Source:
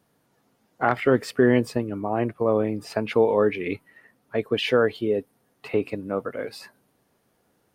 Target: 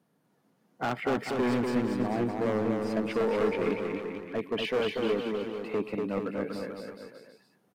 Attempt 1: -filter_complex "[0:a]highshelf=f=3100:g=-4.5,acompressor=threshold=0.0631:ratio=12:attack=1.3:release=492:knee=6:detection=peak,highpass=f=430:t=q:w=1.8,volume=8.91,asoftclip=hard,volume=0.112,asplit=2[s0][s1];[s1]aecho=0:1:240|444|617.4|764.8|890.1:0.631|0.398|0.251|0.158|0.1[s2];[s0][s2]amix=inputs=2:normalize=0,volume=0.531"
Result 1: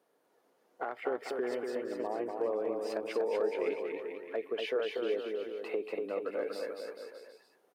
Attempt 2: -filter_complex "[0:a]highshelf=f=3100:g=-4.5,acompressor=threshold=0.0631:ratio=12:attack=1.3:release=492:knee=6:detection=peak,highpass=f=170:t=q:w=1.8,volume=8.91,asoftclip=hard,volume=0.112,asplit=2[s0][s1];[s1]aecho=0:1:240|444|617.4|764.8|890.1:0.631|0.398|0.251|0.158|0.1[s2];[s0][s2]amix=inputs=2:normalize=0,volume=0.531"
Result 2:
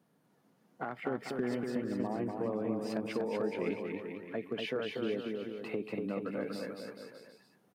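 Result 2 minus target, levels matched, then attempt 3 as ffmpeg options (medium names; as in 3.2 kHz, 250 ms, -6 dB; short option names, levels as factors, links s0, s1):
compression: peak gain reduction +14.5 dB
-filter_complex "[0:a]highpass=f=170:t=q:w=1.8,highshelf=f=3100:g=-4.5,volume=8.91,asoftclip=hard,volume=0.112,asplit=2[s0][s1];[s1]aecho=0:1:240|444|617.4|764.8|890.1:0.631|0.398|0.251|0.158|0.1[s2];[s0][s2]amix=inputs=2:normalize=0,volume=0.531"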